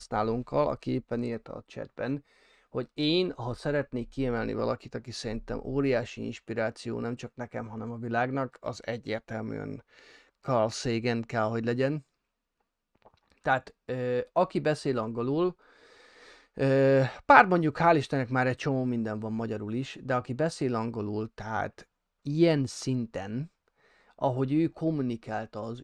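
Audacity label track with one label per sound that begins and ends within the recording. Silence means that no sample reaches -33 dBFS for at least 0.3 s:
2.750000	9.760000	sound
10.480000	11.980000	sound
13.460000	15.500000	sound
16.580000	21.780000	sound
22.270000	23.430000	sound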